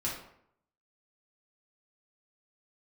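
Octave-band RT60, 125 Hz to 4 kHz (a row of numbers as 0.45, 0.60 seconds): 0.70, 0.75, 0.70, 0.70, 0.60, 0.45 seconds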